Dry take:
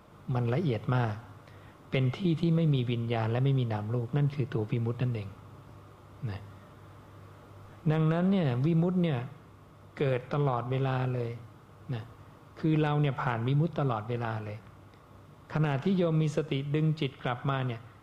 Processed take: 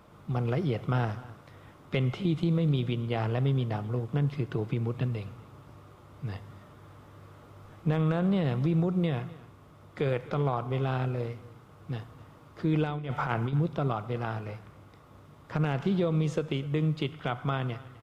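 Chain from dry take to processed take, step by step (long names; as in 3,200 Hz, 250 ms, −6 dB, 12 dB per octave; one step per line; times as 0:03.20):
0:12.84–0:13.53: compressor whose output falls as the input rises −30 dBFS, ratio −0.5
single-tap delay 253 ms −20 dB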